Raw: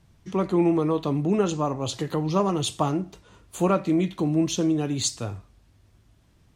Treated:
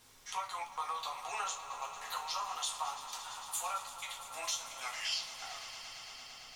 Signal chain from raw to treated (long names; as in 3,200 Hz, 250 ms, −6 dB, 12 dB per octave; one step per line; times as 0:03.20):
turntable brake at the end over 2.01 s
Butterworth high-pass 810 Hz 36 dB per octave
high-shelf EQ 3,700 Hz +9 dB
downward compressor, threshold −40 dBFS, peak gain reduction 22 dB
gate pattern "xxxx.xxxxx.x.xx" 97 BPM
background noise pink −70 dBFS
echo that builds up and dies away 113 ms, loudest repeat 5, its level −16 dB
convolution reverb, pre-delay 3 ms, DRR −2 dB